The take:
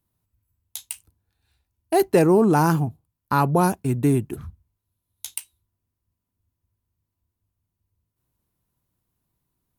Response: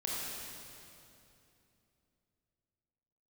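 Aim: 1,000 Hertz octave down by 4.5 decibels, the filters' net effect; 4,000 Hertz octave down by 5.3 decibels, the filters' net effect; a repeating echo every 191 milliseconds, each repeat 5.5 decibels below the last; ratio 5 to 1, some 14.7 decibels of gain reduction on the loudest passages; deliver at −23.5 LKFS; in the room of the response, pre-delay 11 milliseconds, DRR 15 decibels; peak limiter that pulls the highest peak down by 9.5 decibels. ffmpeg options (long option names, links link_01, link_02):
-filter_complex "[0:a]equalizer=frequency=1000:width_type=o:gain=-5.5,equalizer=frequency=4000:width_type=o:gain=-6.5,acompressor=threshold=-30dB:ratio=5,alimiter=limit=-23.5dB:level=0:latency=1,aecho=1:1:191|382|573|764|955|1146|1337:0.531|0.281|0.149|0.079|0.0419|0.0222|0.0118,asplit=2[link_01][link_02];[1:a]atrim=start_sample=2205,adelay=11[link_03];[link_02][link_03]afir=irnorm=-1:irlink=0,volume=-19dB[link_04];[link_01][link_04]amix=inputs=2:normalize=0,volume=11.5dB"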